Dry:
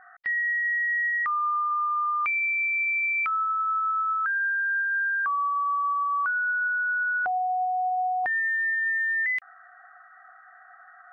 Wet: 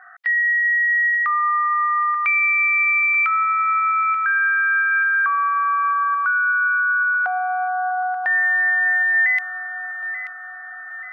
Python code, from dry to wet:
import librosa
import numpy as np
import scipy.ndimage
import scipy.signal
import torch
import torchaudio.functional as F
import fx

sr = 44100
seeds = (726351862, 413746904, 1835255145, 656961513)

y = fx.highpass(x, sr, hz=880.0, slope=6)
y = fx.peak_eq(y, sr, hz=1800.0, db=4.0, octaves=2.9)
y = fx.echo_feedback(y, sr, ms=884, feedback_pct=48, wet_db=-12.0)
y = y * 10.0 ** (4.5 / 20.0)